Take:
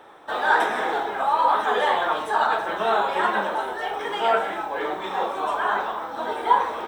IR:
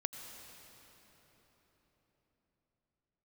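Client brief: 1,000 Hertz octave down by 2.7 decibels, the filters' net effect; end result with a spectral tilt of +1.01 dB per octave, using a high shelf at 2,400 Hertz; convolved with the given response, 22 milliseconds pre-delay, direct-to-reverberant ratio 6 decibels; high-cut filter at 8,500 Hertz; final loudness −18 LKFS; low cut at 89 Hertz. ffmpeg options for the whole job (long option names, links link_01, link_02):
-filter_complex "[0:a]highpass=89,lowpass=8500,equalizer=frequency=1000:width_type=o:gain=-4.5,highshelf=frequency=2400:gain=7.5,asplit=2[link_01][link_02];[1:a]atrim=start_sample=2205,adelay=22[link_03];[link_02][link_03]afir=irnorm=-1:irlink=0,volume=-6dB[link_04];[link_01][link_04]amix=inputs=2:normalize=0,volume=5.5dB"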